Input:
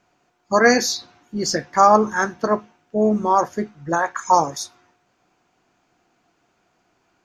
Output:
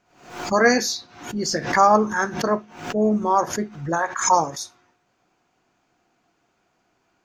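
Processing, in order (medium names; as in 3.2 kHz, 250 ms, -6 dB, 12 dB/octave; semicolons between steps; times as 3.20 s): on a send at -17 dB: reverberation, pre-delay 3 ms; on the sum: swell ahead of each attack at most 100 dB/s; trim -2.5 dB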